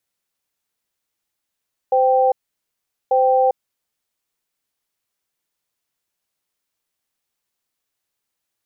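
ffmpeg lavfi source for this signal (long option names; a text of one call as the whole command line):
ffmpeg -f lavfi -i "aevalsrc='0.178*(sin(2*PI*516*t)+sin(2*PI*783*t))*clip(min(mod(t,1.19),0.4-mod(t,1.19))/0.005,0,1)':duration=1.95:sample_rate=44100" out.wav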